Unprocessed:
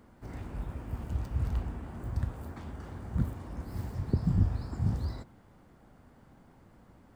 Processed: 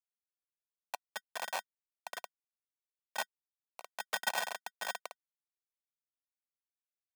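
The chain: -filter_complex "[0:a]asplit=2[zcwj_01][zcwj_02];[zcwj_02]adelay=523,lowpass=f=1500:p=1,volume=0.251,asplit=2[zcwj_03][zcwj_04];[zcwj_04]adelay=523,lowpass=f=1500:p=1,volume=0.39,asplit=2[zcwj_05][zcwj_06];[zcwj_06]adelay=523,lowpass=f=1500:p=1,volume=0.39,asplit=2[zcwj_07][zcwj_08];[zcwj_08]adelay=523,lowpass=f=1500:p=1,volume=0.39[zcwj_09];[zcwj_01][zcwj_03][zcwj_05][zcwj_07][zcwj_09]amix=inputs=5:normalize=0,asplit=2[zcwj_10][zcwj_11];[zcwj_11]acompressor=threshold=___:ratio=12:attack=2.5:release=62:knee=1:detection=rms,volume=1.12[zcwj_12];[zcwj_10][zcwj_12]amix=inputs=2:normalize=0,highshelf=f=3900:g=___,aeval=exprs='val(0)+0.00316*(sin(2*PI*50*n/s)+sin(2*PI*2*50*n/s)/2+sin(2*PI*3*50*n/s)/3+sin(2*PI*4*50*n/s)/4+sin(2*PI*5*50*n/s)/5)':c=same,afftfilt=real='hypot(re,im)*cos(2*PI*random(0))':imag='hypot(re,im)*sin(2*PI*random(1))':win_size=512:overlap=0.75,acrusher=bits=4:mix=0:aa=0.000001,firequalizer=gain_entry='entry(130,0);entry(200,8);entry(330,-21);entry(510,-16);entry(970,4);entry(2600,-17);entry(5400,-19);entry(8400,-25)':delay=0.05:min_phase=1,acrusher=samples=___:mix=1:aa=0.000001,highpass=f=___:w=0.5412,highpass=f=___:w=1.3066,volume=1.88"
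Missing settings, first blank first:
0.00794, -4.5, 26, 600, 600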